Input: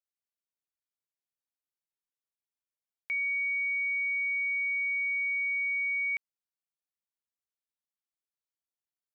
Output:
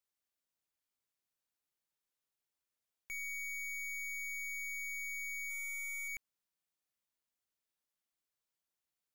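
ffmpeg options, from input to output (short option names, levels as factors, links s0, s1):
-filter_complex "[0:a]asettb=1/sr,asplit=3[s0][s1][s2];[s0]atrim=end=5.504[s3];[s1]atrim=start=5.5:end=6.08,asetpts=PTS-STARTPTS,afade=t=in:d=0.004:c=qsin,afade=t=out:st=0.576:d=0.004:c=qsin,equalizer=f=2200:t=o:w=0.77:g=14.5[s4];[s2]atrim=start=6.076[s5];[s3][s4]acrossfade=d=0.004:c1=hsin:c2=qsin[s6];[s6][s5]acrossfade=d=0.004:c1=qsin:c2=hsin,alimiter=limit=0.0668:level=0:latency=1:release=19,aeval=exprs='(tanh(200*val(0)+0.35)-tanh(0.35))/200':c=same,volume=1.68"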